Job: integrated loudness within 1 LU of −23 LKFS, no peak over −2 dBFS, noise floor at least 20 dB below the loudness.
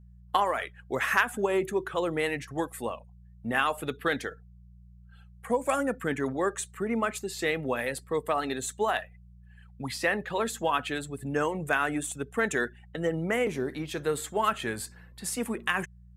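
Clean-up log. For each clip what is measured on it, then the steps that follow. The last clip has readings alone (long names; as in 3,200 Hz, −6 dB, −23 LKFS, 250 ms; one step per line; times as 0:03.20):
mains hum 60 Hz; hum harmonics up to 180 Hz; level of the hum −49 dBFS; integrated loudness −30.0 LKFS; sample peak −11.5 dBFS; target loudness −23.0 LKFS
→ hum removal 60 Hz, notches 3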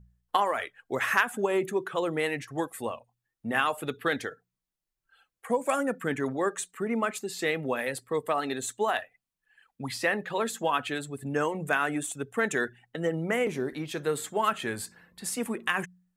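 mains hum none found; integrated loudness −30.0 LKFS; sample peak −11.5 dBFS; target loudness −23.0 LKFS
→ level +7 dB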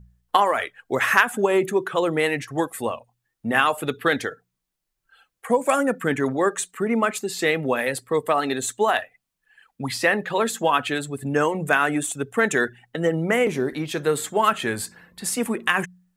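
integrated loudness −23.0 LKFS; sample peak −4.5 dBFS; background noise floor −80 dBFS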